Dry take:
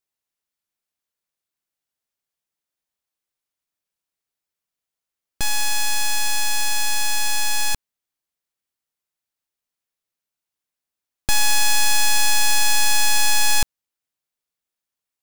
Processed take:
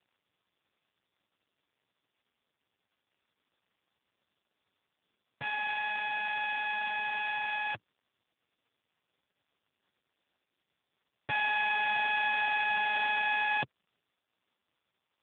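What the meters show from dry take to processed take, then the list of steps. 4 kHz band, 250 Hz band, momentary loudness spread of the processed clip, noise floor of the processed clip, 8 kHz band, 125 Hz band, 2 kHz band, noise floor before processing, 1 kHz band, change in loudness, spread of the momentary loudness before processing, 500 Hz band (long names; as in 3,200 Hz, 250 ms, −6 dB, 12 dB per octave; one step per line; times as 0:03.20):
−17.0 dB, −12.5 dB, 7 LU, below −85 dBFS, below −40 dB, −17.0 dB, −4.5 dB, below −85 dBFS, −4.0 dB, −10.5 dB, 7 LU, −4.5 dB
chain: high-pass filter sweep 110 Hz → 890 Hz, 0:13.57–0:14.41
surface crackle 210 per second −53 dBFS
level −3.5 dB
AMR narrowband 5.15 kbit/s 8,000 Hz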